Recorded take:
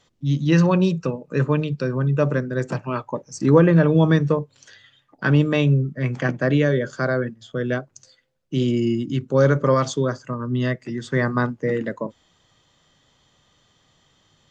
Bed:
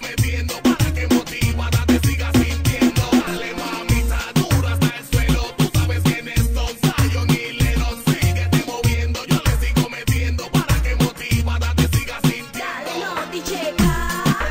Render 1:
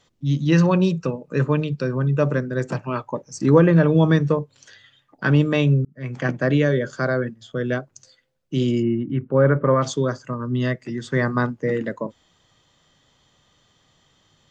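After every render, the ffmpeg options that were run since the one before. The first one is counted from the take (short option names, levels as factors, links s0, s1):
-filter_complex "[0:a]asplit=3[s0][s1][s2];[s0]afade=t=out:st=8.81:d=0.02[s3];[s1]lowpass=f=2200:w=0.5412,lowpass=f=2200:w=1.3066,afade=t=in:st=8.81:d=0.02,afade=t=out:st=9.81:d=0.02[s4];[s2]afade=t=in:st=9.81:d=0.02[s5];[s3][s4][s5]amix=inputs=3:normalize=0,asplit=2[s6][s7];[s6]atrim=end=5.85,asetpts=PTS-STARTPTS,afade=t=out:st=5.846:d=0.004:c=hsin[s8];[s7]atrim=start=5.85,asetpts=PTS-STARTPTS,afade=t=in:d=0.45[s9];[s8][s9]concat=n=2:v=0:a=1"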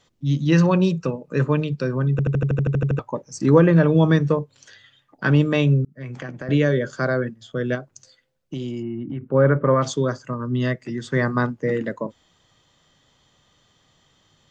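-filter_complex "[0:a]asettb=1/sr,asplit=3[s0][s1][s2];[s0]atrim=end=5.994[s3];[s1]atrim=start=5.99:end=6.49,asetpts=PTS-STARTPTS,afade=t=in:d=0.004:c=qsin,afade=t=out:st=0.496:d=0.004:c=qsin,acompressor=threshold=0.0355:ratio=6:attack=3.2:release=140:knee=1:detection=peak[s4];[s2]atrim=start=6.486[s5];[s3][s4]acrossfade=d=0.004:c1=hsin:c2=qsin[s6];[s6][s5]acrossfade=d=0.004:c1=qsin:c2=hsin,asettb=1/sr,asplit=3[s7][s8][s9];[s7]atrim=end=7.754[s10];[s8]atrim=start=7.75:end=9.23,asetpts=PTS-STARTPTS,afade=t=in:d=0.004:c=qsin,afade=t=out:st=1.476:d=0.004:c=qsin,acompressor=threshold=0.0562:ratio=6:attack=3.2:release=140:knee=1:detection=peak[s11];[s9]atrim=start=9.226[s12];[s10][s11]acrossfade=d=0.004:c1=hsin:c2=qsin[s13];[s13][s12]acrossfade=d=0.004:c1=qsin:c2=hsin,asplit=12[s14][s15][s16][s17][s18][s19][s20][s21][s22][s23][s24][s25];[s14]atrim=end=2.192[s26];[s15]atrim=start=2.108:end=2.192[s27];[s16]atrim=start=2.108:end=2.192[s28];[s17]atrim=start=2.108:end=2.192[s29];[s18]atrim=start=2.108:end=2.192[s30];[s19]atrim=start=2.108:end=2.192[s31];[s20]atrim=start=2.108:end=2.192[s32];[s21]atrim=start=2.108:end=2.192[s33];[s22]atrim=start=2.108:end=2.192[s34];[s23]atrim=start=2.108:end=2.192[s35];[s24]atrim=start=2.108:end=2.192[s36];[s25]atrim=start=2.988[s37];[s26][s27]acrossfade=d=0.004:c1=hsin:c2=hsin[s38];[s38][s28]acrossfade=d=0.004:c1=hsin:c2=hsin[s39];[s39][s29]acrossfade=d=0.004:c1=hsin:c2=hsin[s40];[s40][s30]acrossfade=d=0.004:c1=hsin:c2=hsin[s41];[s41][s31]acrossfade=d=0.004:c1=hsin:c2=hsin[s42];[s42][s32]acrossfade=d=0.004:c1=hsin:c2=hsin[s43];[s43][s33]acrossfade=d=0.004:c1=hsin:c2=hsin[s44];[s44][s34]acrossfade=d=0.004:c1=hsin:c2=hsin[s45];[s45][s35]acrossfade=d=0.004:c1=hsin:c2=hsin[s46];[s46][s36]acrossfade=d=0.004:c1=hsin:c2=hsin[s47];[s47][s37]acrossfade=d=0.004:c1=hsin:c2=hsin"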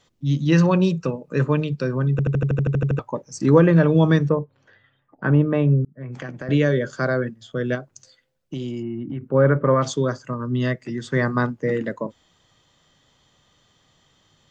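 -filter_complex "[0:a]asplit=3[s0][s1][s2];[s0]afade=t=out:st=4.28:d=0.02[s3];[s1]lowpass=1400,afade=t=in:st=4.28:d=0.02,afade=t=out:st=6.11:d=0.02[s4];[s2]afade=t=in:st=6.11:d=0.02[s5];[s3][s4][s5]amix=inputs=3:normalize=0"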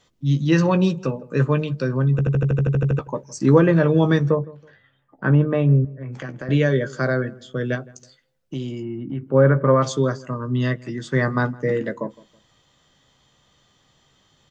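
-filter_complex "[0:a]asplit=2[s0][s1];[s1]adelay=15,volume=0.316[s2];[s0][s2]amix=inputs=2:normalize=0,asplit=2[s3][s4];[s4]adelay=162,lowpass=f=1300:p=1,volume=0.0891,asplit=2[s5][s6];[s6]adelay=162,lowpass=f=1300:p=1,volume=0.33[s7];[s3][s5][s7]amix=inputs=3:normalize=0"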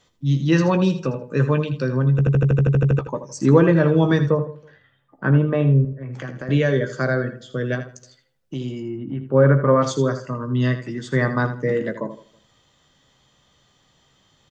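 -af "aecho=1:1:80|160:0.282|0.0507"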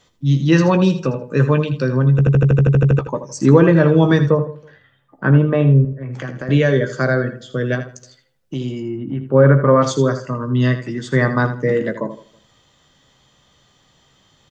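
-af "volume=1.58,alimiter=limit=0.891:level=0:latency=1"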